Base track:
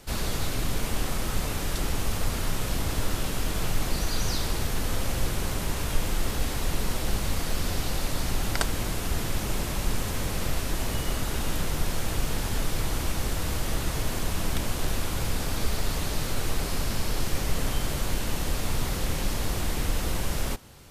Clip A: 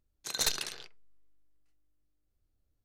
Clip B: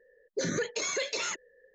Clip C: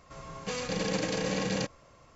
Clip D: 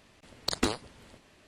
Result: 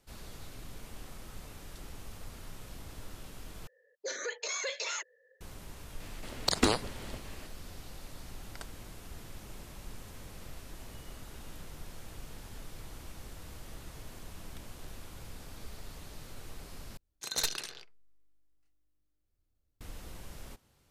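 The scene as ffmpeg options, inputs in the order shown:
-filter_complex "[0:a]volume=-18.5dB[a];[2:a]highpass=f=510:w=0.5412,highpass=f=510:w=1.3066[b];[4:a]alimiter=level_in=19.5dB:limit=-1dB:release=50:level=0:latency=1[c];[a]asplit=3[d][e][f];[d]atrim=end=3.674[g];[b]atrim=end=1.74,asetpts=PTS-STARTPTS,volume=-3dB[h];[e]atrim=start=5.406:end=16.974[i];[1:a]atrim=end=2.84,asetpts=PTS-STARTPTS,volume=-2dB[j];[f]atrim=start=19.806[k];[c]atrim=end=1.47,asetpts=PTS-STARTPTS,volume=-11dB,afade=t=in:d=0.004:c=hsin,afade=t=out:st=1.466:d=0.004:c=hsin,adelay=6000[l];[g][h]acrossfade=d=0.004:c1=hsin:c2=hsin[m];[m][i]acrossfade=d=0.004:c1=hsin:c2=hsin[n];[n][j]acrossfade=d=0.004:c1=hsin:c2=hsin[o];[o][k]acrossfade=d=0.004:c1=hsin:c2=hsin[p];[p][l]amix=inputs=2:normalize=0"

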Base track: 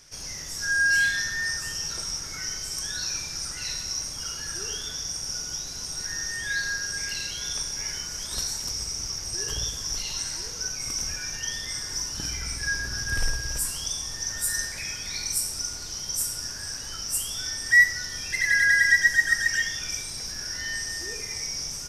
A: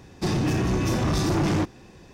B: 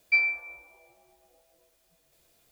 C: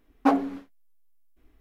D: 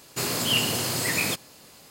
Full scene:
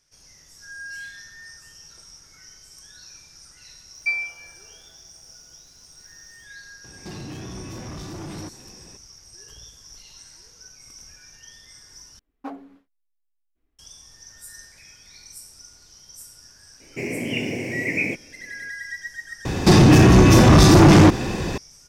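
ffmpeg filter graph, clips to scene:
-filter_complex "[1:a]asplit=2[a][b];[0:a]volume=-15dB[c];[a]acompressor=threshold=-35dB:ratio=6:attack=3.2:release=140:knee=1:detection=peak[d];[4:a]firequalizer=gain_entry='entry(140,0);entry(280,8);entry(570,1);entry(1300,-24);entry(2200,12);entry(3600,-29);entry(6400,-16);entry(11000,-24)':delay=0.05:min_phase=1[e];[b]alimiter=level_in=29dB:limit=-1dB:release=50:level=0:latency=1[f];[c]asplit=3[g][h][i];[g]atrim=end=12.194[j];[3:a]atrim=end=1.6,asetpts=PTS-STARTPTS,volume=-14.5dB[k];[h]atrim=start=13.786:end=19.454[l];[f]atrim=end=2.13,asetpts=PTS-STARTPTS,volume=-6.5dB[m];[i]atrim=start=21.576[n];[2:a]atrim=end=2.51,asetpts=PTS-STARTPTS,volume=-1.5dB,afade=t=in:d=0.004:c=hsin,afade=t=out:st=2.506:d=0.004:c=hsin,adelay=3940[o];[d]atrim=end=2.13,asetpts=PTS-STARTPTS,volume=-0.5dB,afade=t=in:d=0.004:c=hsin,afade=t=out:st=2.126:d=0.004:c=hsin,adelay=6840[p];[e]atrim=end=1.9,asetpts=PTS-STARTPTS,volume=-1dB,afade=t=in:d=0.004:c=hsin,afade=t=out:st=1.896:d=0.004:c=hsin,adelay=16800[q];[j][k]acrossfade=d=0.004:c1=hsin:c2=hsin[r];[r][l]acrossfade=d=0.004:c1=hsin:c2=hsin[s];[s][m]acrossfade=d=0.004:c1=hsin:c2=hsin[t];[t][n]acrossfade=d=0.004:c1=hsin:c2=hsin[u];[u][o][p][q]amix=inputs=4:normalize=0"

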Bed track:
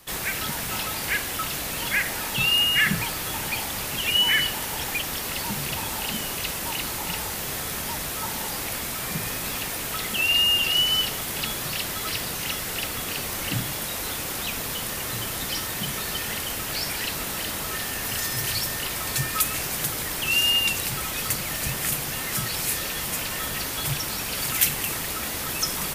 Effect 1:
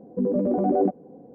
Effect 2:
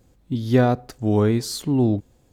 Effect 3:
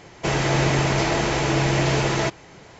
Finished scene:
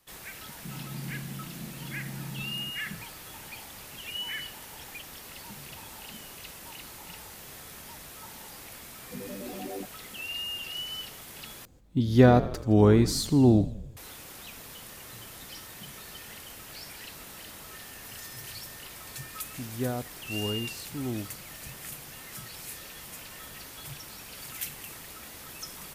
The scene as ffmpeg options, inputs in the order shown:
-filter_complex "[2:a]asplit=2[a][b];[0:a]volume=-15dB[c];[3:a]asuperpass=centerf=190:order=4:qfactor=2.1[d];[a]asplit=7[e][f][g][h][i][j][k];[f]adelay=82,afreqshift=-47,volume=-15dB[l];[g]adelay=164,afreqshift=-94,volume=-19.3dB[m];[h]adelay=246,afreqshift=-141,volume=-23.6dB[n];[i]adelay=328,afreqshift=-188,volume=-27.9dB[o];[j]adelay=410,afreqshift=-235,volume=-32.2dB[p];[k]adelay=492,afreqshift=-282,volume=-36.5dB[q];[e][l][m][n][o][p][q]amix=inputs=7:normalize=0[r];[c]asplit=2[s][t];[s]atrim=end=11.654[u];[r]atrim=end=2.32,asetpts=PTS-STARTPTS,volume=-0.5dB[v];[t]atrim=start=13.966[w];[d]atrim=end=2.79,asetpts=PTS-STARTPTS,volume=-9.5dB,afade=t=in:d=0.004:c=hsin,afade=t=out:st=2.786:d=0.004:c=hsin,adelay=400[x];[1:a]atrim=end=1.34,asetpts=PTS-STARTPTS,volume=-17dB,afade=t=in:d=0.004:c=hsin,afade=t=out:st=1.336:d=0.004:c=hsin,adelay=8950[y];[b]atrim=end=2.32,asetpts=PTS-STARTPTS,volume=-14.5dB,afade=t=in:d=0.004:c=hsin,afade=t=out:st=2.316:d=0.004:c=hsin,adelay=19270[z];[u][v]acrossfade=d=0.004:c1=hsin:c2=hsin[aa];[aa][w]acrossfade=d=0.004:c1=hsin:c2=hsin[ab];[ab][x][y][z]amix=inputs=4:normalize=0"

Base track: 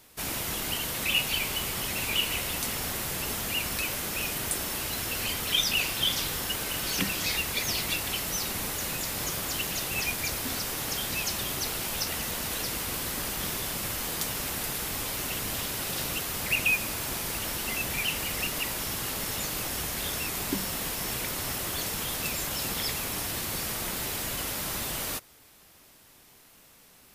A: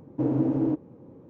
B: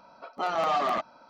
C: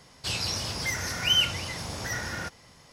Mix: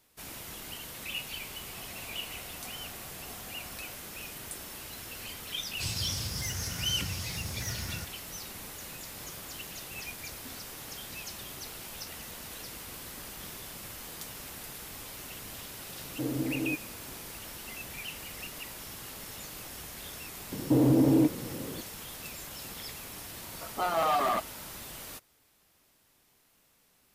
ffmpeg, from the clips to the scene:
-filter_complex "[3:a]asplit=2[a][b];[1:a]asplit=2[c][d];[0:a]volume=-11dB[e];[a]asplit=3[f][g][h];[f]bandpass=f=730:t=q:w=8,volume=0dB[i];[g]bandpass=f=1.09k:t=q:w=8,volume=-6dB[j];[h]bandpass=f=2.44k:t=q:w=8,volume=-9dB[k];[i][j][k]amix=inputs=3:normalize=0[l];[b]bass=f=250:g=14,treble=f=4k:g=13[m];[d]alimiter=level_in=24dB:limit=-1dB:release=50:level=0:latency=1[n];[l]atrim=end=2.92,asetpts=PTS-STARTPTS,volume=-6.5dB,afade=t=in:d=0.004:c=hsin,afade=t=out:st=2.916:d=0.004:c=hsin,adelay=1430[o];[m]atrim=end=2.92,asetpts=PTS-STARTPTS,volume=-13dB,afade=t=in:d=0.004:c=hsin,afade=t=out:st=2.916:d=0.004:c=hsin,adelay=5560[p];[c]atrim=end=1.29,asetpts=PTS-STARTPTS,volume=-8dB,afade=t=in:d=0.004:c=hsin,afade=t=out:st=1.286:d=0.004:c=hsin,adelay=16000[q];[n]atrim=end=1.29,asetpts=PTS-STARTPTS,volume=-15dB,afade=t=in:d=0.004:c=hsin,afade=t=out:st=1.286:d=0.004:c=hsin,adelay=904932S[r];[2:a]atrim=end=1.29,asetpts=PTS-STARTPTS,volume=-1dB,afade=t=in:d=0.004:c=hsin,afade=t=out:st=1.286:d=0.004:c=hsin,adelay=23390[s];[e][o][p][q][r][s]amix=inputs=6:normalize=0"

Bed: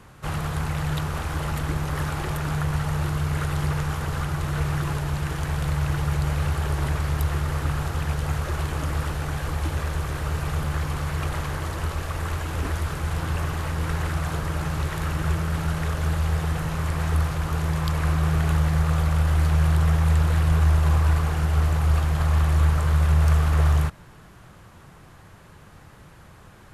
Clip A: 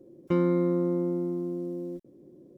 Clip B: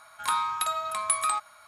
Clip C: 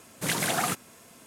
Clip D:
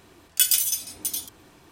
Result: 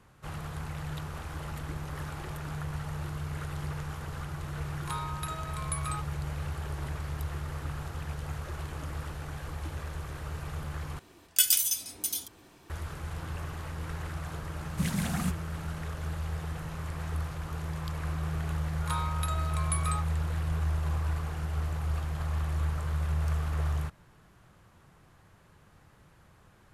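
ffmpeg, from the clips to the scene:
-filter_complex "[2:a]asplit=2[a][b];[0:a]volume=-11dB[c];[3:a]lowshelf=f=270:t=q:w=3:g=10.5[d];[c]asplit=2[e][f];[e]atrim=end=10.994[g];[4:a]atrim=end=1.71,asetpts=PTS-STARTPTS,volume=-3.5dB[h];[f]atrim=start=12.696[i];[a]atrim=end=1.67,asetpts=PTS-STARTPTS,volume=-10.5dB,afade=t=in:d=0.004:c=hsin,afade=t=out:st=1.666:d=0.004:c=hsin,adelay=4620[j];[d]atrim=end=1.26,asetpts=PTS-STARTPTS,volume=-10.5dB,afade=t=in:d=0.004:c=hsin,afade=t=out:st=1.256:d=0.004:c=hsin,adelay=14560[k];[b]atrim=end=1.67,asetpts=PTS-STARTPTS,volume=-8dB,afade=t=in:d=0.004:c=hsin,afade=t=out:st=1.666:d=0.004:c=hsin,adelay=18620[l];[g][h]acrossfade=d=0.004:c1=hsin:c2=hsin[m];[m][i]acrossfade=d=0.004:c1=hsin:c2=hsin[n];[n][j][k][l]amix=inputs=4:normalize=0"

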